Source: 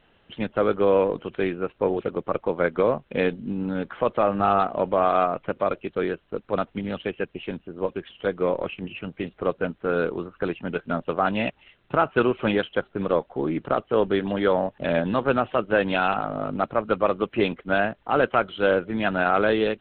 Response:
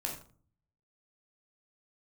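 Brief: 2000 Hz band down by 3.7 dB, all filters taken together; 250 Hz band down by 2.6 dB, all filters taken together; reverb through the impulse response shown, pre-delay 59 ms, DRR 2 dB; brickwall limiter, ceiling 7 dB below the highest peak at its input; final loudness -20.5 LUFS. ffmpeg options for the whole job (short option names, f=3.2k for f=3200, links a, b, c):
-filter_complex "[0:a]equalizer=f=250:t=o:g=-3.5,equalizer=f=2k:t=o:g=-5.5,alimiter=limit=-16dB:level=0:latency=1,asplit=2[a][b];[1:a]atrim=start_sample=2205,adelay=59[c];[b][c]afir=irnorm=-1:irlink=0,volume=-4dB[d];[a][d]amix=inputs=2:normalize=0,volume=6.5dB"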